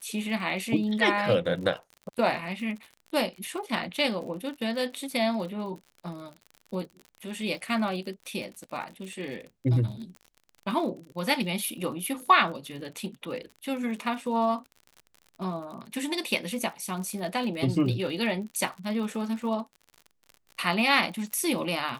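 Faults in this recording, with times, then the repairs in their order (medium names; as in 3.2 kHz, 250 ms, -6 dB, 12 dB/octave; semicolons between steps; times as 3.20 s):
crackle 52 per s -37 dBFS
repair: de-click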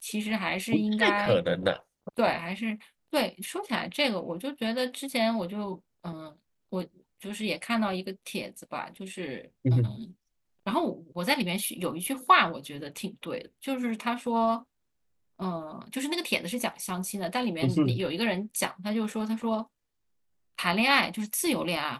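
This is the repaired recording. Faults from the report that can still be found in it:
nothing left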